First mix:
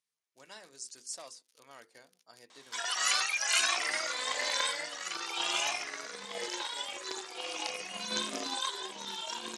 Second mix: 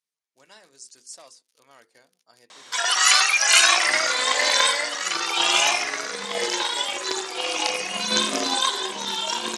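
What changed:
background +9.5 dB; reverb: on, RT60 1.1 s

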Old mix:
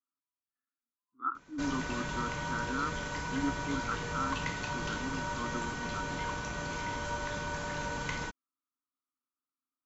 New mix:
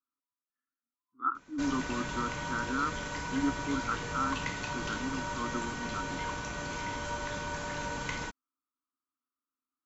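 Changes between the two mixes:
speech +3.0 dB; reverb: on, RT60 0.45 s

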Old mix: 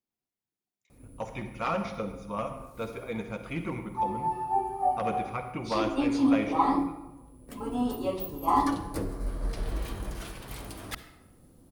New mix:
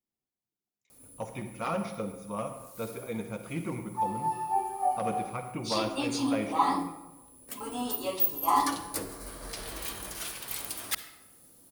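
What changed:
speech: add peaking EQ 1.9 kHz -4 dB 2.6 oct; background: add tilt EQ +3.5 dB/octave

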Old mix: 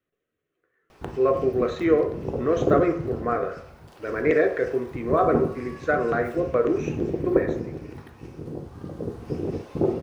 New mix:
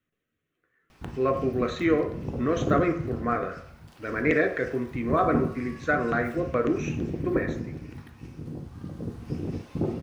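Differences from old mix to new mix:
speech +4.0 dB; master: add FFT filter 260 Hz 0 dB, 400 Hz -10 dB, 2.2 kHz -1 dB

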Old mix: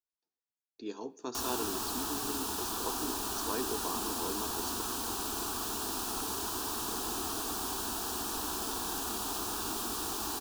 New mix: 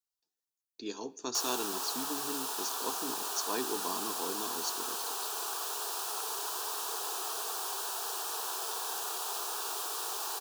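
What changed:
speech: add treble shelf 2.8 kHz +12 dB; background: add steep high-pass 410 Hz 48 dB/octave

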